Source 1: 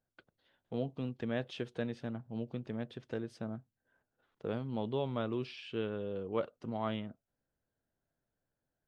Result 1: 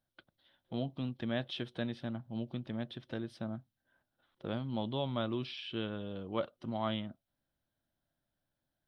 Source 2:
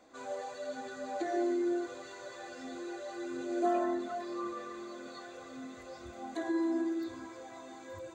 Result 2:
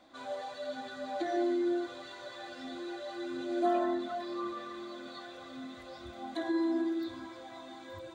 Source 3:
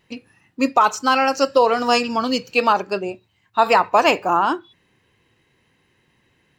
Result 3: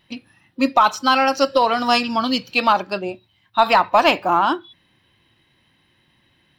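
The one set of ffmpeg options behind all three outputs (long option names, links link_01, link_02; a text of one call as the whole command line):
ffmpeg -i in.wav -filter_complex "[0:a]superequalizer=7b=0.398:13b=2:15b=0.398,asplit=2[link_01][link_02];[link_02]aeval=exprs='clip(val(0),-1,0.211)':channel_layout=same,volume=-11.5dB[link_03];[link_01][link_03]amix=inputs=2:normalize=0,volume=-1dB" out.wav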